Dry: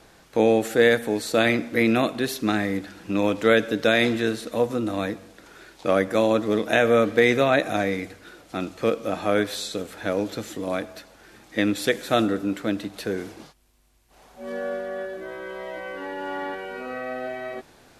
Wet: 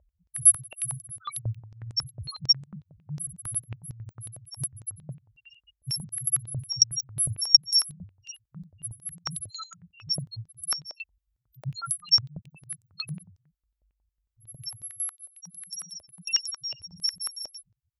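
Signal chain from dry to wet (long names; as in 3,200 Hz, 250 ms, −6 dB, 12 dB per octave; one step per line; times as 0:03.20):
samples in bit-reversed order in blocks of 128 samples
high-shelf EQ 4,900 Hz −10 dB
spectral peaks only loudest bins 1
boost into a limiter +32 dB
band-pass on a step sequencer 11 Hz 610–7,900 Hz
level +4 dB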